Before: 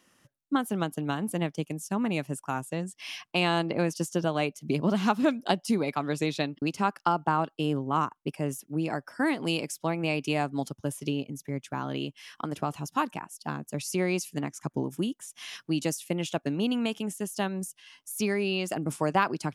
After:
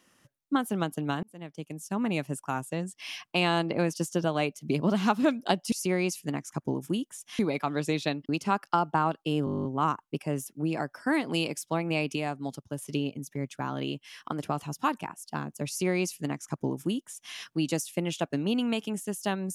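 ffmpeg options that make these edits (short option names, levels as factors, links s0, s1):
-filter_complex "[0:a]asplit=16[s0][s1][s2][s3][s4][s5][s6][s7][s8][s9][s10][s11][s12][s13][s14][s15];[s0]atrim=end=1.23,asetpts=PTS-STARTPTS,afade=t=out:st=1.226:d=0.004:c=hsin[s16];[s1]atrim=start=1.23:end=5.722,asetpts=PTS-STARTPTS,afade=t=in:d=0.86[s17];[s2]atrim=start=13.808:end=15.482[s18];[s3]atrim=start=5.718:end=7.802[s19];[s4]atrim=start=7.778:end=7.802[s20];[s5]atrim=start=7.778:end=7.802[s21];[s6]atrim=start=7.778:end=7.802[s22];[s7]atrim=start=7.778:end=7.802[s23];[s8]atrim=start=7.778:end=7.802[s24];[s9]atrim=start=7.778:end=7.802[s25];[s10]atrim=start=7.778:end=7.802[s26];[s11]atrim=start=7.778:end=7.802[s27];[s12]atrim=start=7.778:end=7.802[s28];[s13]atrim=start=7.778:end=10.292[s29];[s14]atrim=start=10.288:end=10.952,asetpts=PTS-STARTPTS,volume=0.631[s30];[s15]atrim=start=10.948[s31];[s16][s17]concat=n=2:v=0:a=1[s32];[s32][s18]acrossfade=d=0.004:c1=hsin:c2=hsin[s33];[s33][s19]acrossfade=d=0.004:c1=hsin:c2=hsin[s34];[s34][s20]acrossfade=d=0.004:c1=hsin:c2=hsin[s35];[s35][s21]acrossfade=d=0.004:c1=hsin:c2=hsin[s36];[s36][s22]acrossfade=d=0.004:c1=hsin:c2=hsin[s37];[s37][s23]acrossfade=d=0.004:c1=hsin:c2=hsin[s38];[s38][s24]acrossfade=d=0.004:c1=hsin:c2=hsin[s39];[s39][s25]acrossfade=d=0.004:c1=hsin:c2=hsin[s40];[s40][s26]acrossfade=d=0.004:c1=hsin:c2=hsin[s41];[s41][s27]acrossfade=d=0.004:c1=hsin:c2=hsin[s42];[s42][s28]acrossfade=d=0.004:c1=hsin:c2=hsin[s43];[s43][s29]acrossfade=d=0.004:c1=hsin:c2=hsin[s44];[s44][s30]acrossfade=d=0.004:c1=hsin:c2=hsin[s45];[s45][s31]acrossfade=d=0.004:c1=hsin:c2=hsin"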